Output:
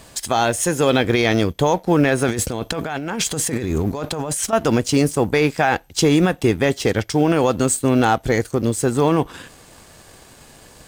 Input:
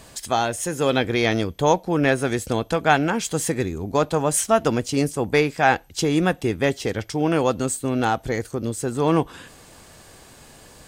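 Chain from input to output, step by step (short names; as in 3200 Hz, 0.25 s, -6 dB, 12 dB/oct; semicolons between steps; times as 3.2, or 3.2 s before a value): G.711 law mismatch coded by A; limiter -14 dBFS, peak gain reduction 11 dB; 2.28–4.53 negative-ratio compressor -31 dBFS, ratio -1; gain +7.5 dB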